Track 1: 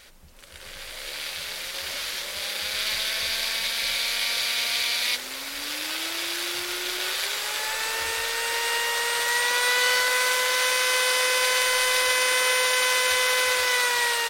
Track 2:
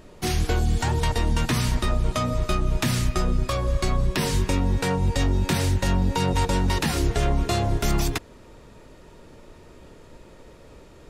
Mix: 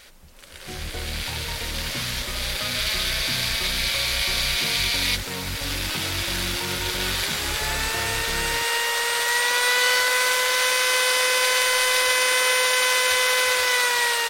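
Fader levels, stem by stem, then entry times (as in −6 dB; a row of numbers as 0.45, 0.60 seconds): +2.0, −11.0 decibels; 0.00, 0.45 seconds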